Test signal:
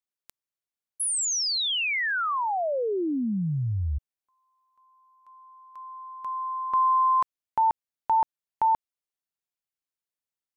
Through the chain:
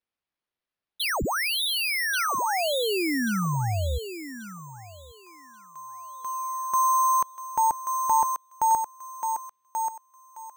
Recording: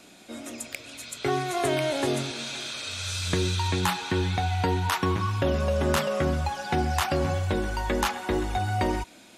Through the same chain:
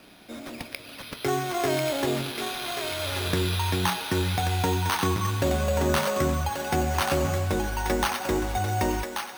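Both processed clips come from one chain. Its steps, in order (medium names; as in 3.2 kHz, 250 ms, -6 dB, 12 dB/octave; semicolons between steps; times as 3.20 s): careless resampling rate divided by 6×, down none, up hold; thinning echo 1134 ms, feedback 25%, high-pass 610 Hz, level -4.5 dB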